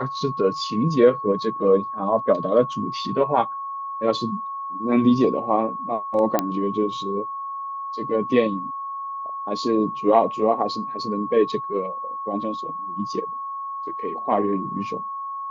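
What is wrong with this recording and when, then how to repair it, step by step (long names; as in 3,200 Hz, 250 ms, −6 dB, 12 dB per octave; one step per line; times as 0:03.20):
whistle 1,100 Hz −28 dBFS
0:06.39: click −6 dBFS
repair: click removal
notch filter 1,100 Hz, Q 30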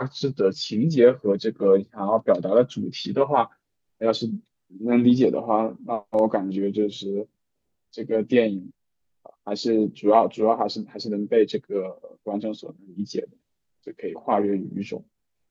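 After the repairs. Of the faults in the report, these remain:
none of them is left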